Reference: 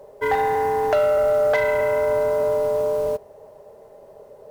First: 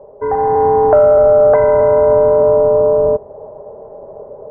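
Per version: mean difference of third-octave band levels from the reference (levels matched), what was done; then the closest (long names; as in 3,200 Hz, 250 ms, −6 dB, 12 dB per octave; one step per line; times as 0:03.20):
6.0 dB: low-pass filter 1,100 Hz 24 dB per octave
dynamic equaliser 710 Hz, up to −3 dB, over −34 dBFS, Q 1.2
automatic gain control gain up to 7 dB
level +5.5 dB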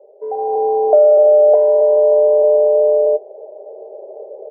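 11.5 dB: automatic gain control gain up to 14 dB
Chebyshev band-pass filter 350–750 Hz, order 3
double-tracking delay 13 ms −12 dB
level −1 dB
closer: first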